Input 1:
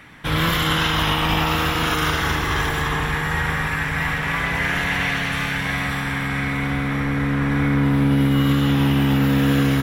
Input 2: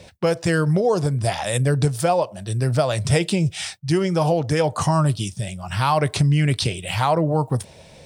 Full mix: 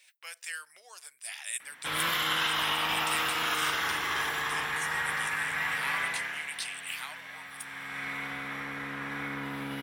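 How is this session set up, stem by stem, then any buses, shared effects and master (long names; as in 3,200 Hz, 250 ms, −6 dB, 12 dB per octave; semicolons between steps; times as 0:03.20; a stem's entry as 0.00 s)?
0:06.02 −3.5 dB → 0:06.51 −16 dB → 0:07.50 −16 dB → 0:08.09 −5.5 dB, 1.60 s, no send, high-shelf EQ 4,100 Hz −10.5 dB
−6.5 dB, 0.00 s, no send, high-pass with resonance 2,200 Hz, resonance Q 1.6; parametric band 4,700 Hz −11.5 dB 1.9 octaves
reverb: not used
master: high-pass filter 1,400 Hz 6 dB per octave; high-shelf EQ 6,100 Hz +8.5 dB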